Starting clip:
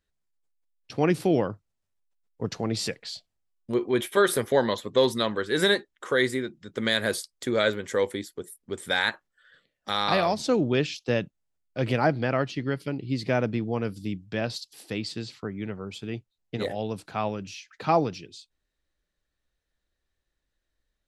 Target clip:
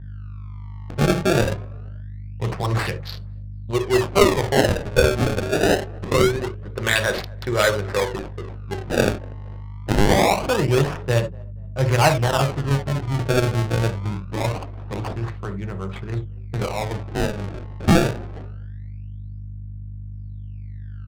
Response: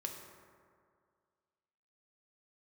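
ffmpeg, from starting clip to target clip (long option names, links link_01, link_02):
-filter_complex "[0:a]aeval=exprs='val(0)+0.01*(sin(2*PI*50*n/s)+sin(2*PI*2*50*n/s)/2+sin(2*PI*3*50*n/s)/3+sin(2*PI*4*50*n/s)/4+sin(2*PI*5*50*n/s)/5)':channel_layout=same,equalizer=frequency=125:width_type=o:width=1:gain=9,equalizer=frequency=250:width_type=o:width=1:gain=-9,equalizer=frequency=1000:width_type=o:width=1:gain=8,equalizer=frequency=4000:width_type=o:width=1:gain=4[link_01];[1:a]atrim=start_sample=2205,atrim=end_sample=3969[link_02];[link_01][link_02]afir=irnorm=-1:irlink=0,acrusher=samples=25:mix=1:aa=0.000001:lfo=1:lforange=40:lforate=0.24,asplit=3[link_03][link_04][link_05];[link_04]adelay=238,afreqshift=34,volume=-24dB[link_06];[link_05]adelay=476,afreqshift=68,volume=-33.4dB[link_07];[link_03][link_06][link_07]amix=inputs=3:normalize=0,adynamicsmooth=sensitivity=7.5:basefreq=880,volume=5.5dB"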